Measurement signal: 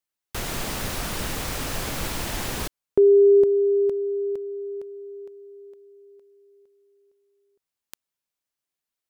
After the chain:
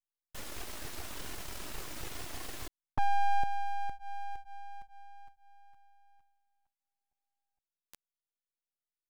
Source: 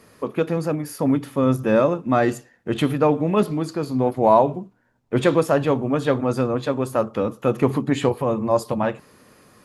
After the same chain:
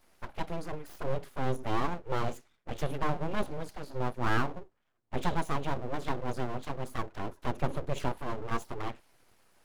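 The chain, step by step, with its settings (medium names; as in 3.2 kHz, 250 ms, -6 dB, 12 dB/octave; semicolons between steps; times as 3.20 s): touch-sensitive flanger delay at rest 11.6 ms, full sweep at -16.5 dBFS; full-wave rectifier; trim -8.5 dB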